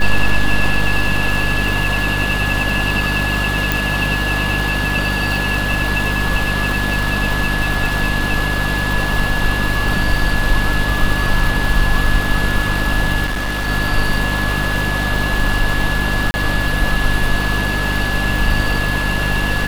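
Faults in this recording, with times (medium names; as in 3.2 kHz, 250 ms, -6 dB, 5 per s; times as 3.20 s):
crackle 390 per s -23 dBFS
hum 50 Hz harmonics 6 -21 dBFS
whine 1.7 kHz -21 dBFS
3.72 s: pop
13.25–13.69 s: clipped -17 dBFS
16.31–16.34 s: dropout 30 ms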